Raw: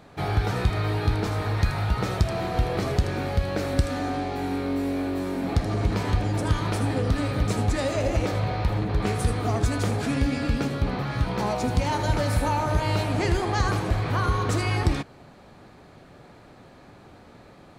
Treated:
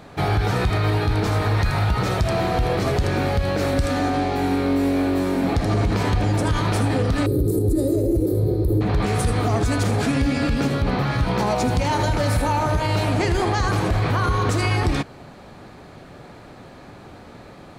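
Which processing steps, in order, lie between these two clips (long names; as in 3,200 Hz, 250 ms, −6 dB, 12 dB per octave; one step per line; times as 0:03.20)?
0:07.26–0:08.81: drawn EQ curve 130 Hz 0 dB, 230 Hz −5 dB, 360 Hz +14 dB, 760 Hz −19 dB, 1,500 Hz −24 dB, 2,800 Hz −29 dB, 4,100 Hz −13 dB, 6,100 Hz −17 dB, 12,000 Hz +12 dB
brickwall limiter −19 dBFS, peak gain reduction 9 dB
level +7 dB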